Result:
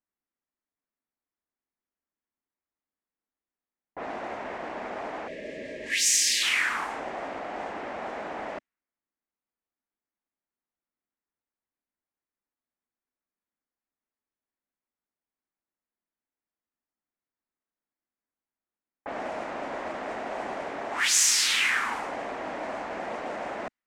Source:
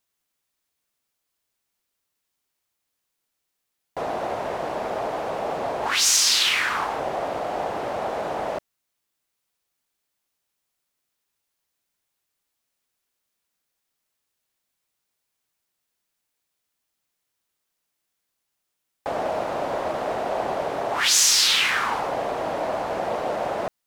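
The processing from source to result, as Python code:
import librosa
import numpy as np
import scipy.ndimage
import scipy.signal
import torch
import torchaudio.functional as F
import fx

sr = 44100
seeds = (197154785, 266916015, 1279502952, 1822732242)

y = fx.graphic_eq(x, sr, hz=(125, 250, 500, 2000, 4000, 8000), db=(-8, 7, -3, 8, -3, 7))
y = fx.env_lowpass(y, sr, base_hz=1000.0, full_db=-19.0)
y = fx.spec_box(y, sr, start_s=5.28, length_s=1.15, low_hz=650.0, high_hz=1600.0, gain_db=-26)
y = y * 10.0 ** (-8.0 / 20.0)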